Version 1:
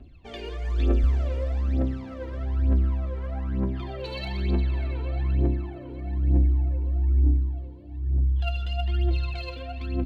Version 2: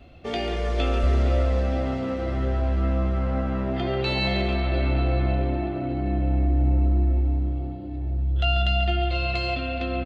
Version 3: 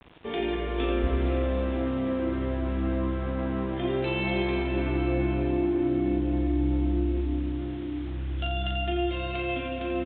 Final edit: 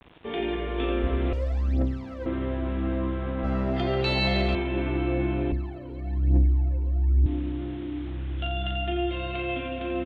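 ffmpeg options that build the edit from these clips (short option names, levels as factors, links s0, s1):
-filter_complex "[0:a]asplit=2[s0][s1];[2:a]asplit=4[s2][s3][s4][s5];[s2]atrim=end=1.332[s6];[s0]atrim=start=1.328:end=2.262[s7];[s3]atrim=start=2.258:end=3.442[s8];[1:a]atrim=start=3.438:end=4.552[s9];[s4]atrim=start=4.548:end=5.522[s10];[s1]atrim=start=5.518:end=7.262[s11];[s5]atrim=start=7.258[s12];[s6][s7]acrossfade=d=0.004:c1=hsin:c2=hsin[s13];[s13][s8]acrossfade=d=0.004:c1=hsin:c2=hsin[s14];[s14][s9]acrossfade=d=0.004:c1=hsin:c2=hsin[s15];[s15][s10]acrossfade=d=0.004:c1=hsin:c2=hsin[s16];[s16][s11]acrossfade=d=0.004:c1=hsin:c2=hsin[s17];[s17][s12]acrossfade=d=0.004:c1=hsin:c2=hsin"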